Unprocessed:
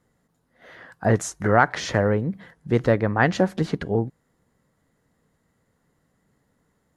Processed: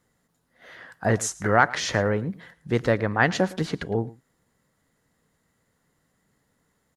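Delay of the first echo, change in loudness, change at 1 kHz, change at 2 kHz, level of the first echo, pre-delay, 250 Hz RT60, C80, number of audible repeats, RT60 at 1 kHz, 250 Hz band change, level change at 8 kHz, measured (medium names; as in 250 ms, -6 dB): 110 ms, -2.0 dB, -1.5 dB, +0.5 dB, -20.0 dB, no reverb, no reverb, no reverb, 1, no reverb, -3.5 dB, +3.5 dB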